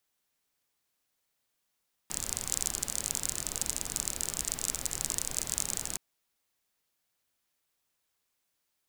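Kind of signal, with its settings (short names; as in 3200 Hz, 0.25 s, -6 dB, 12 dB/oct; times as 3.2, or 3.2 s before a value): rain from filtered ticks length 3.87 s, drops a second 37, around 7400 Hz, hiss -7.5 dB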